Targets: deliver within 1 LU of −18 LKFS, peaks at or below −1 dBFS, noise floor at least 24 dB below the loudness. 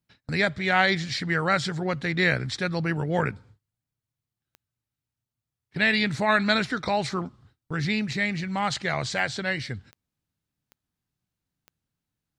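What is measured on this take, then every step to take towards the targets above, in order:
number of clicks 5; integrated loudness −25.5 LKFS; sample peak −7.5 dBFS; target loudness −18.0 LKFS
→ click removal
level +7.5 dB
brickwall limiter −1 dBFS

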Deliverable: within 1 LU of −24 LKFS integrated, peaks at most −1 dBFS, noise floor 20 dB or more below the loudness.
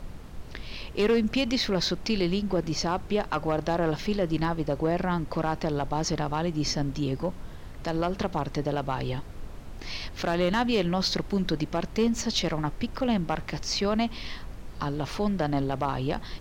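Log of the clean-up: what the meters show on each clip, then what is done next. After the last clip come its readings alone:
share of clipped samples 0.4%; peaks flattened at −17.0 dBFS; background noise floor −41 dBFS; target noise floor −48 dBFS; integrated loudness −28.0 LKFS; sample peak −17.0 dBFS; target loudness −24.0 LKFS
→ clipped peaks rebuilt −17 dBFS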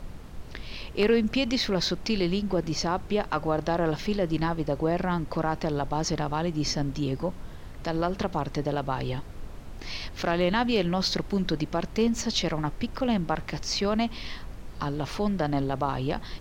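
share of clipped samples 0.0%; background noise floor −41 dBFS; target noise floor −48 dBFS
→ noise reduction from a noise print 7 dB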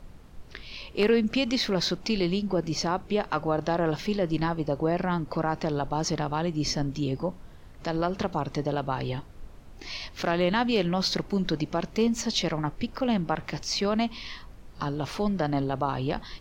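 background noise floor −47 dBFS; target noise floor −48 dBFS
→ noise reduction from a noise print 6 dB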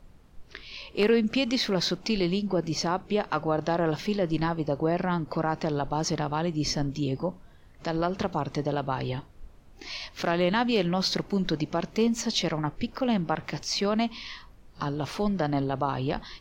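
background noise floor −52 dBFS; integrated loudness −28.0 LKFS; sample peak −8.5 dBFS; target loudness −24.0 LKFS
→ level +4 dB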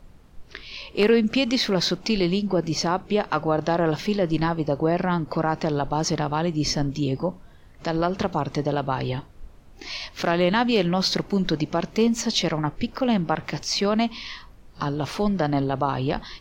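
integrated loudness −24.0 LKFS; sample peak −4.5 dBFS; background noise floor −48 dBFS

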